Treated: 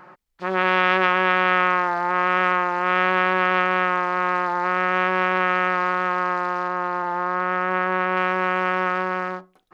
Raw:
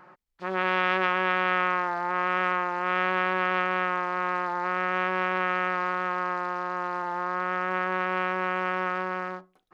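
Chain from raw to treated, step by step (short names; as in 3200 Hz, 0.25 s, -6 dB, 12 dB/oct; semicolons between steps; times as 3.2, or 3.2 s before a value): 6.68–8.17 high shelf 4300 Hz -7.5 dB; gain +6 dB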